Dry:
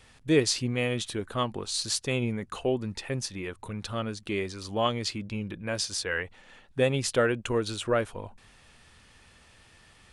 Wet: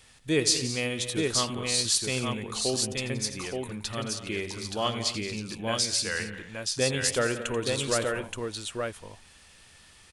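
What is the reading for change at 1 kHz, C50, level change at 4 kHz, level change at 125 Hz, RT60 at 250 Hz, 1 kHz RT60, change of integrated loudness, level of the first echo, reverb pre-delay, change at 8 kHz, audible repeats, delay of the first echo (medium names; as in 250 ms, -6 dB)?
-0.5 dB, no reverb, +5.0 dB, -1.5 dB, no reverb, no reverb, +1.0 dB, -13.0 dB, no reverb, +7.0 dB, 5, 85 ms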